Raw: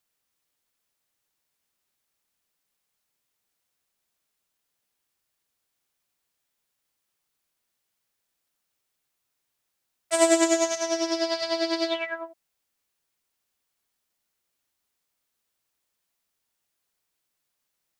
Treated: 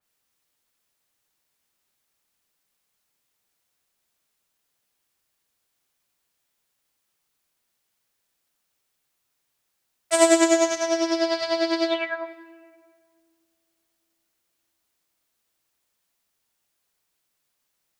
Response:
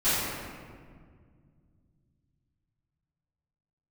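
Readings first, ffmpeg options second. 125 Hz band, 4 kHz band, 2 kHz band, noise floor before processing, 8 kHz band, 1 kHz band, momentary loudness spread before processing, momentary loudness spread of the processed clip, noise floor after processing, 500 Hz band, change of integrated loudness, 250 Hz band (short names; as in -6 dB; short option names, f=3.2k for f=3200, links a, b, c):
n/a, +1.0 dB, +3.5 dB, -80 dBFS, +1.5 dB, +3.5 dB, 12 LU, 11 LU, -76 dBFS, +3.5 dB, +2.5 dB, +3.5 dB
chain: -filter_complex "[0:a]asplit=2[a][b];[b]highpass=250[c];[1:a]atrim=start_sample=2205,adelay=25[d];[c][d]afir=irnorm=-1:irlink=0,volume=-29dB[e];[a][e]amix=inputs=2:normalize=0,adynamicequalizer=threshold=0.01:dfrequency=3100:dqfactor=0.7:tfrequency=3100:tqfactor=0.7:attack=5:release=100:ratio=0.375:range=2.5:mode=cutabove:tftype=highshelf,volume=3.5dB"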